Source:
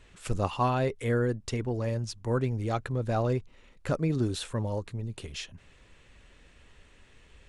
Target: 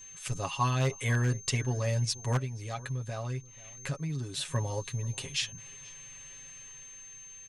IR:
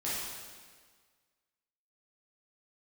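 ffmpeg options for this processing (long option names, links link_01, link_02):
-filter_complex "[0:a]dynaudnorm=framelen=140:gausssize=13:maxgain=5dB,aeval=exprs='val(0)+0.00282*sin(2*PI*6300*n/s)':channel_layout=same,aecho=1:1:7.3:0.73,asplit=3[link_01][link_02][link_03];[link_01]afade=type=out:start_time=2.36:duration=0.02[link_04];[link_02]acompressor=threshold=-34dB:ratio=2,afade=type=in:start_time=2.36:duration=0.02,afade=type=out:start_time=4.52:duration=0.02[link_05];[link_03]afade=type=in:start_time=4.52:duration=0.02[link_06];[link_04][link_05][link_06]amix=inputs=3:normalize=0,equalizer=frequency=140:width_type=o:width=0.88:gain=11.5,bandreject=frequency=1400:width=13,asplit=2[link_07][link_08];[link_08]adelay=484,volume=-20dB,highshelf=frequency=4000:gain=-10.9[link_09];[link_07][link_09]amix=inputs=2:normalize=0,aeval=exprs='0.447*(abs(mod(val(0)/0.447+3,4)-2)-1)':channel_layout=same,tiltshelf=frequency=840:gain=-8,volume=-6.5dB"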